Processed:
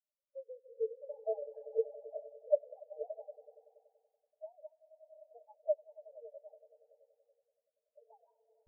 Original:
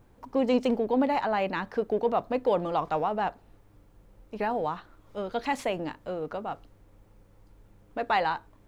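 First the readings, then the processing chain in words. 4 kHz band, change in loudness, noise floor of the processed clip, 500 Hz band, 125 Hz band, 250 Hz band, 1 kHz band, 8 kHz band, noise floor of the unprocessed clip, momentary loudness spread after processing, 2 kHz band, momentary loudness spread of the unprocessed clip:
under -40 dB, -11.0 dB, under -85 dBFS, -9.5 dB, under -40 dB, under -40 dB, -29.5 dB, under -25 dB, -59 dBFS, 22 LU, under -40 dB, 12 LU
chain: jump at every zero crossing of -28.5 dBFS; high-order bell 1.9 kHz -10.5 dB; compression 2:1, threshold -29 dBFS, peak gain reduction 6.5 dB; rippled Chebyshev high-pass 430 Hz, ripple 9 dB; flange 0.44 Hz, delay 3.1 ms, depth 1.9 ms, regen -10%; on a send: echo with a slow build-up 95 ms, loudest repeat 5, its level -6.5 dB; on the sum: spectral contrast expander 4:1; trim +4 dB

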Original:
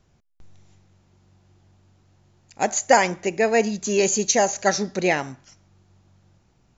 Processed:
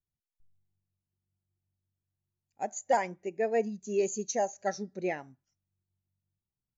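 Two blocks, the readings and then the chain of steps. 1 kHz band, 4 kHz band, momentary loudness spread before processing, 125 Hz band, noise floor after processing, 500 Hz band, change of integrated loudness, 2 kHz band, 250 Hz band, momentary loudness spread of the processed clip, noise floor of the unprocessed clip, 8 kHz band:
-10.5 dB, -20.0 dB, 7 LU, -13.0 dB, under -85 dBFS, -9.0 dB, -11.0 dB, -15.5 dB, -11.5 dB, 9 LU, -63 dBFS, no reading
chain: hard clipper -10 dBFS, distortion -20 dB; spectral contrast expander 1.5:1; trim -7 dB

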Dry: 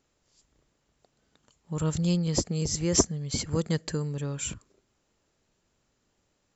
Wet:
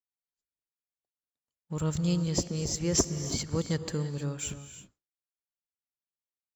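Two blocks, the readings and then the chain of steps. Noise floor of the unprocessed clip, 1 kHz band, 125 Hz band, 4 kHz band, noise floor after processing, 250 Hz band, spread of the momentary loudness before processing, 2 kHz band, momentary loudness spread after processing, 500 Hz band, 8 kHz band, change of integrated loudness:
-75 dBFS, -2.5 dB, -2.0 dB, -2.0 dB, under -85 dBFS, -2.0 dB, 10 LU, -2.0 dB, 12 LU, -2.5 dB, no reading, -2.0 dB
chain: waveshaping leveller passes 1; gated-style reverb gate 360 ms rising, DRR 10.5 dB; expander -50 dBFS; trim -6 dB

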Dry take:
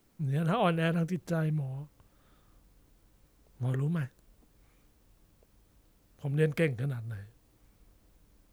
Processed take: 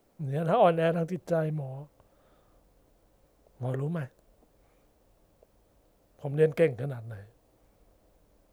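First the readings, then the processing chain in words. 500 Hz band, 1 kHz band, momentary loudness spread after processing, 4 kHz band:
+7.5 dB, +5.5 dB, 18 LU, no reading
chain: peaking EQ 600 Hz +12.5 dB 1.3 oct; trim -3 dB

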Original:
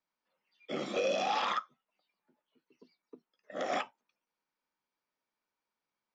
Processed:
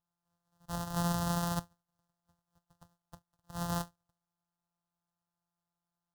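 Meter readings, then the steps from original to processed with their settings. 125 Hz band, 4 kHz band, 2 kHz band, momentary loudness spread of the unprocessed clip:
+20.0 dB, -5.0 dB, -7.0 dB, 11 LU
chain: sorted samples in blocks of 256 samples; static phaser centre 950 Hz, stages 4; trim +2.5 dB

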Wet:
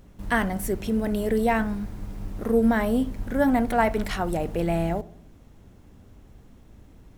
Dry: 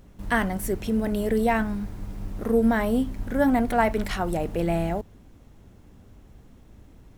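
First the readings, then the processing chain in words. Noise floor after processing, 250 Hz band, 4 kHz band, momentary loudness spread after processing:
-51 dBFS, 0.0 dB, 0.0 dB, 12 LU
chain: on a send: filtered feedback delay 66 ms, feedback 57%, low-pass 1.2 kHz, level -18.5 dB

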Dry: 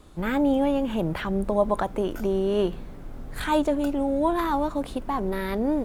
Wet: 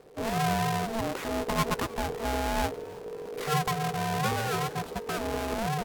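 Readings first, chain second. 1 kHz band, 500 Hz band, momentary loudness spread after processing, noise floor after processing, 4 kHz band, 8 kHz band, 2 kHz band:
-0.5 dB, -7.0 dB, 7 LU, -42 dBFS, +3.5 dB, +9.5 dB, +1.5 dB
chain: square wave that keeps the level; ring modulator 450 Hz; frequency-shifting echo 312 ms, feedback 64%, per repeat +61 Hz, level -22.5 dB; trim -6 dB

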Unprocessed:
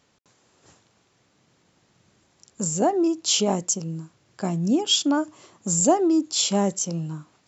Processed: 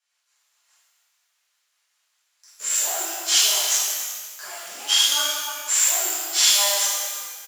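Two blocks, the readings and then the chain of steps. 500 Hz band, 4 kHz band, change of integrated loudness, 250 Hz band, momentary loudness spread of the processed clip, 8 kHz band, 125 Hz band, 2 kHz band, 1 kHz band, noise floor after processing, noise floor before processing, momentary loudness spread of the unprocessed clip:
-11.5 dB, +7.0 dB, +3.5 dB, -28.0 dB, 15 LU, no reading, under -40 dB, +11.0 dB, -4.0 dB, -72 dBFS, -65 dBFS, 13 LU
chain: CVSD coder 64 kbps; transient shaper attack +5 dB, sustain -3 dB; in parallel at -8.5 dB: bit crusher 6-bit; on the sum: peak limiter -11 dBFS, peak gain reduction 11 dB; on a send: delay 307 ms -12 dB; on the sum: rotary cabinet horn 5 Hz, later 1 Hz, at 4.30 s; Bessel high-pass 1.4 kHz, order 4; gate -56 dBFS, range -11 dB; harmonic-percussive split percussive -5 dB; pitch-shifted reverb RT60 1.4 s, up +12 st, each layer -8 dB, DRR -11.5 dB

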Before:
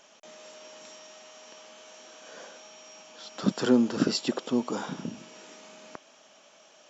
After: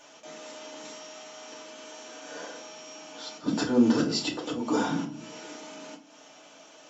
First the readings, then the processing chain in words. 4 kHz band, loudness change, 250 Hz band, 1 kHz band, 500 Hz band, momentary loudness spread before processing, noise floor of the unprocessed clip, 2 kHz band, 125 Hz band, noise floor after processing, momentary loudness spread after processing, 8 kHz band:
+1.5 dB, -0.5 dB, +1.0 dB, +3.5 dB, 0.0 dB, 24 LU, -57 dBFS, +2.5 dB, 0.0 dB, -53 dBFS, 20 LU, no reading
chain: slow attack 228 ms; hum notches 50/100/150 Hz; FDN reverb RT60 0.37 s, low-frequency decay 1.5×, high-frequency decay 0.75×, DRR -4 dB

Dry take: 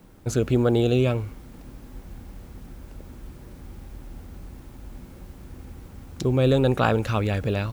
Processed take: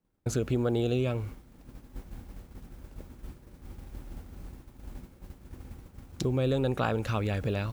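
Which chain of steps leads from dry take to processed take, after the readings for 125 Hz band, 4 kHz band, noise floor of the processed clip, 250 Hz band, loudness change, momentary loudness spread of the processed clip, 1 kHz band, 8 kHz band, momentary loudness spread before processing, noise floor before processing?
-6.5 dB, -6.5 dB, -56 dBFS, -7.0 dB, -7.0 dB, 21 LU, -7.5 dB, -4.0 dB, 8 LU, -45 dBFS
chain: expander -32 dBFS; compression 2:1, threshold -38 dBFS, peak gain reduction 12.5 dB; trim +4 dB

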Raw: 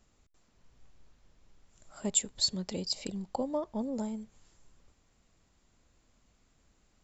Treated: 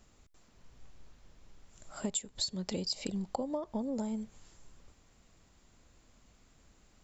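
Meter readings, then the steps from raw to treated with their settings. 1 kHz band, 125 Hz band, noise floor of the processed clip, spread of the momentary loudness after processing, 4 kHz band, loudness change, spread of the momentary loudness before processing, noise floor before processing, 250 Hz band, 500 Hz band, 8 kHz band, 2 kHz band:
-1.5 dB, 0.0 dB, -65 dBFS, 6 LU, -4.0 dB, -3.5 dB, 9 LU, -70 dBFS, -0.5 dB, -2.0 dB, no reading, 0.0 dB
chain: compression 16:1, threshold -36 dBFS, peak gain reduction 15.5 dB; trim +5 dB

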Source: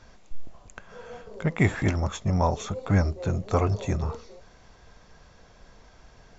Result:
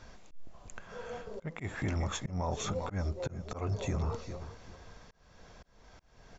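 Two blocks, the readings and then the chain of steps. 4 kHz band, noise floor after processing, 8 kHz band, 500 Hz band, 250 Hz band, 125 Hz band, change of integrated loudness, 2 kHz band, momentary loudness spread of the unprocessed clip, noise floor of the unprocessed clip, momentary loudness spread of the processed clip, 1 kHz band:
-2.5 dB, -63 dBFS, no reading, -8.5 dB, -11.0 dB, -10.0 dB, -10.5 dB, -10.0 dB, 19 LU, -54 dBFS, 18 LU, -9.0 dB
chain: feedback delay 396 ms, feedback 27%, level -17 dB; slow attack 375 ms; peak limiter -25 dBFS, peak gain reduction 10 dB

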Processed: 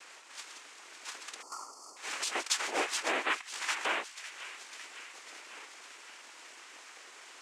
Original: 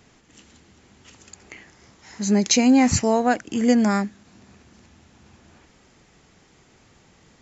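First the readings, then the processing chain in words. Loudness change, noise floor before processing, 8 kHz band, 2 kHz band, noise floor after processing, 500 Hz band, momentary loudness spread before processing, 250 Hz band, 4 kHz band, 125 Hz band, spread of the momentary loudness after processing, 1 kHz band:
-16.0 dB, -57 dBFS, no reading, -2.0 dB, -53 dBFS, -16.0 dB, 9 LU, -30.5 dB, -5.0 dB, under -40 dB, 18 LU, -10.5 dB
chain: brick-wall FIR band-pass 760–6000 Hz; dynamic bell 1.4 kHz, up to +7 dB, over -44 dBFS, Q 1.6; compression 4:1, threshold -41 dBFS, peak gain reduction 19.5 dB; noise-vocoded speech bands 4; on a send: feedback echo behind a high-pass 554 ms, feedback 66%, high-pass 1.7 kHz, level -12 dB; on the sum: time-frequency box 1.42–1.97 s, 1.4–4.3 kHz -27 dB; trim +8.5 dB

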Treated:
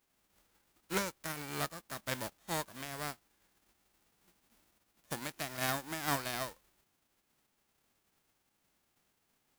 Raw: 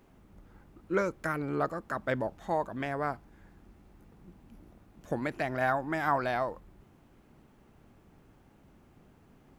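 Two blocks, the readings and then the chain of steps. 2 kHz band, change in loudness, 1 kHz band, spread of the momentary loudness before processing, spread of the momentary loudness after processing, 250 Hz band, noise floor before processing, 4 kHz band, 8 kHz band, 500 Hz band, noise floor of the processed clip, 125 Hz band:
-5.0 dB, -6.0 dB, -8.5 dB, 7 LU, 8 LU, -8.0 dB, -61 dBFS, +9.0 dB, no reading, -10.5 dB, -79 dBFS, -6.0 dB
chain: formants flattened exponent 0.3; upward expansion 1.5:1, over -50 dBFS; trim -5 dB

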